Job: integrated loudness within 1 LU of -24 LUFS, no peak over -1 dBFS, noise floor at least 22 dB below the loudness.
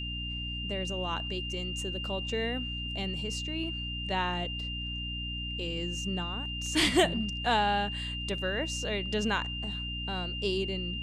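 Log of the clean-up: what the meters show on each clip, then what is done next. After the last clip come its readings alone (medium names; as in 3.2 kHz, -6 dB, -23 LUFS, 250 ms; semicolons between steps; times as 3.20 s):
hum 60 Hz; highest harmonic 300 Hz; hum level -36 dBFS; steady tone 2.8 kHz; tone level -36 dBFS; loudness -31.5 LUFS; peak level -11.5 dBFS; loudness target -24.0 LUFS
-> hum notches 60/120/180/240/300 Hz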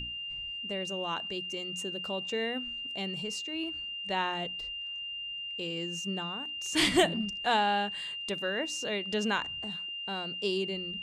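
hum not found; steady tone 2.8 kHz; tone level -36 dBFS
-> band-stop 2.8 kHz, Q 30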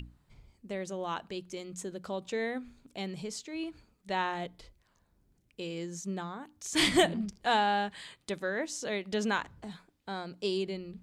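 steady tone not found; loudness -33.5 LUFS; peak level -12.0 dBFS; loudness target -24.0 LUFS
-> trim +9.5 dB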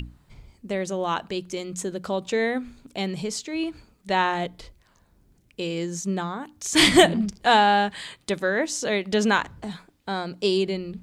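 loudness -24.0 LUFS; peak level -2.5 dBFS; noise floor -63 dBFS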